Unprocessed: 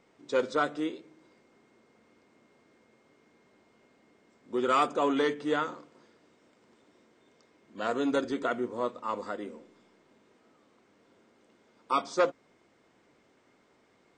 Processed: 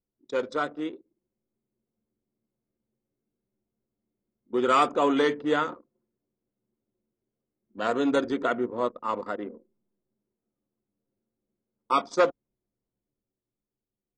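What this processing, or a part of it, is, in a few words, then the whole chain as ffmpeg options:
voice memo with heavy noise removal: -af "anlmdn=0.251,dynaudnorm=framelen=210:gausssize=13:maxgain=5dB,volume=-1dB"

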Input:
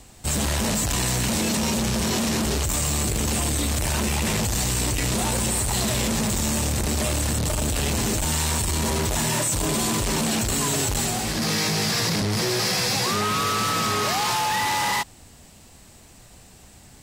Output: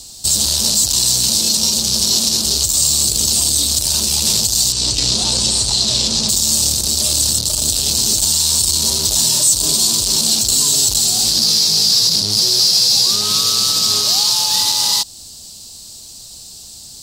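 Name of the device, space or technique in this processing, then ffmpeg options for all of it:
over-bright horn tweeter: -filter_complex "[0:a]asettb=1/sr,asplit=3[link_01][link_02][link_03];[link_01]atrim=end=4.724[link_04];[link_02]atrim=start=4.72:end=6.29,asetpts=PTS-STARTPTS,afade=type=in:duration=0.004:curve=qsin,afade=type=out:start_time=1.566:duration=0.004:curve=qsin,lowpass=5500[link_05];[link_03]atrim=start=6.286[link_06];[link_04][link_05]acrossfade=duration=0.004:curve1=hsin:curve2=qsin[link_07];[link_07][link_06]acrossfade=duration=0.004:curve1=qsin:curve2=hsin,highshelf=frequency=3000:width_type=q:width=3:gain=14,alimiter=limit=-4dB:level=0:latency=1:release=219"

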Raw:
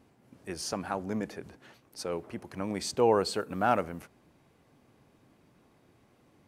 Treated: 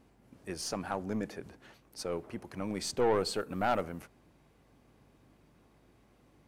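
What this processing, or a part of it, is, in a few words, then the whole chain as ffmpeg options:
valve amplifier with mains hum: -af "aeval=exprs='(tanh(11.2*val(0)+0.4)-tanh(0.4))/11.2':channel_layout=same,aeval=exprs='val(0)+0.000355*(sin(2*PI*50*n/s)+sin(2*PI*2*50*n/s)/2+sin(2*PI*3*50*n/s)/3+sin(2*PI*4*50*n/s)/4+sin(2*PI*5*50*n/s)/5)':channel_layout=same"

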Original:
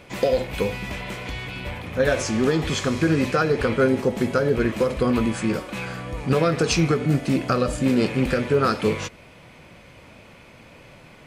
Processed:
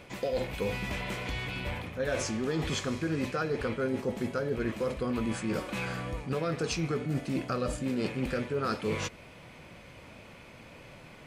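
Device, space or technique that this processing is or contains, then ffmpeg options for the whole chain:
compression on the reversed sound: -af "areverse,acompressor=threshold=-25dB:ratio=6,areverse,volume=-3dB"

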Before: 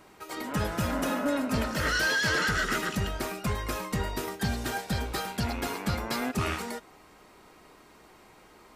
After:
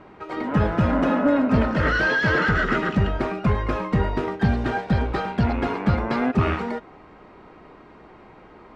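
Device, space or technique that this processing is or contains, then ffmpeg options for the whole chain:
phone in a pocket: -af "lowpass=3000,equalizer=frequency=160:width_type=o:width=2.6:gain=2,highshelf=frequency=2400:gain=-9,volume=8.5dB"

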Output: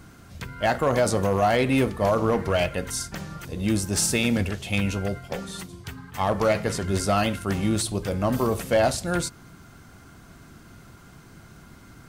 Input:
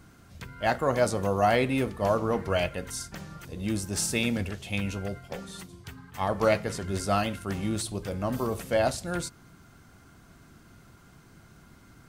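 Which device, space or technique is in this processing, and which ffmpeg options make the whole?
limiter into clipper: -af "alimiter=limit=-17dB:level=0:latency=1:release=46,asoftclip=type=hard:threshold=-20dB,volume=6dB"

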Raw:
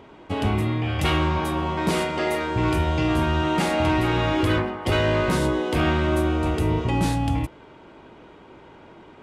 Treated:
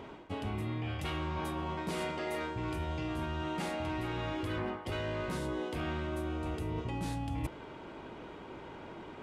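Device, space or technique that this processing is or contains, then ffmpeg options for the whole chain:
compression on the reversed sound: -af "areverse,acompressor=threshold=-33dB:ratio=12,areverse"

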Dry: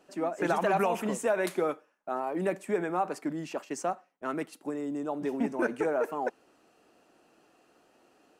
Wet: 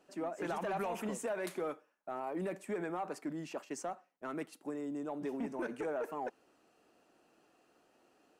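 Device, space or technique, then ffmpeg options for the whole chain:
soft clipper into limiter: -af "asoftclip=type=tanh:threshold=-20.5dB,alimiter=level_in=1dB:limit=-24dB:level=0:latency=1:release=58,volume=-1dB,volume=-5.5dB"

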